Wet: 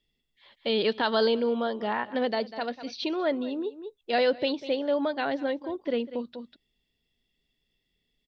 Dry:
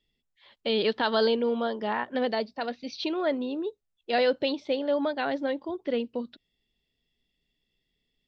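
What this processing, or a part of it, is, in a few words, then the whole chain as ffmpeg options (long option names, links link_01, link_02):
ducked delay: -filter_complex "[0:a]asplit=3[link_01][link_02][link_03];[link_02]adelay=196,volume=-6dB[link_04];[link_03]apad=whole_len=373445[link_05];[link_04][link_05]sidechaincompress=threshold=-44dB:ratio=5:attack=16:release=172[link_06];[link_01][link_06]amix=inputs=2:normalize=0"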